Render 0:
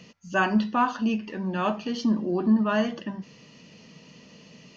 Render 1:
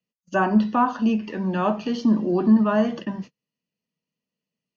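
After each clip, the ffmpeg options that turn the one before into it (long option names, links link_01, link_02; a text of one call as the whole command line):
ffmpeg -i in.wav -filter_complex "[0:a]agate=range=-42dB:threshold=-39dB:ratio=16:detection=peak,acrossover=split=150|530|1300[link_01][link_02][link_03][link_04];[link_04]acompressor=threshold=-42dB:ratio=6[link_05];[link_01][link_02][link_03][link_05]amix=inputs=4:normalize=0,volume=4.5dB" out.wav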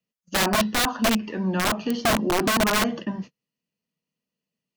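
ffmpeg -i in.wav -af "aeval=exprs='(mod(5.96*val(0)+1,2)-1)/5.96':channel_layout=same" out.wav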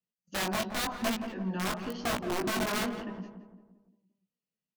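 ffmpeg -i in.wav -filter_complex "[0:a]flanger=delay=16.5:depth=4.9:speed=0.92,asplit=2[link_01][link_02];[link_02]adelay=171,lowpass=frequency=1300:poles=1,volume=-7.5dB,asplit=2[link_03][link_04];[link_04]adelay=171,lowpass=frequency=1300:poles=1,volume=0.5,asplit=2[link_05][link_06];[link_06]adelay=171,lowpass=frequency=1300:poles=1,volume=0.5,asplit=2[link_07][link_08];[link_08]adelay=171,lowpass=frequency=1300:poles=1,volume=0.5,asplit=2[link_09][link_10];[link_10]adelay=171,lowpass=frequency=1300:poles=1,volume=0.5,asplit=2[link_11][link_12];[link_12]adelay=171,lowpass=frequency=1300:poles=1,volume=0.5[link_13];[link_03][link_05][link_07][link_09][link_11][link_13]amix=inputs=6:normalize=0[link_14];[link_01][link_14]amix=inputs=2:normalize=0,volume=-7dB" out.wav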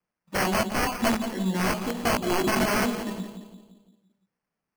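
ffmpeg -i in.wav -af "acrusher=samples=12:mix=1:aa=0.000001,volume=7dB" out.wav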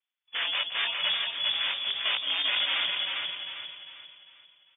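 ffmpeg -i in.wav -af "aecho=1:1:399|798|1197|1596|1995:0.631|0.24|0.0911|0.0346|0.0132,lowpass=frequency=3100:width_type=q:width=0.5098,lowpass=frequency=3100:width_type=q:width=0.6013,lowpass=frequency=3100:width_type=q:width=0.9,lowpass=frequency=3100:width_type=q:width=2.563,afreqshift=-3600,volume=-5dB" out.wav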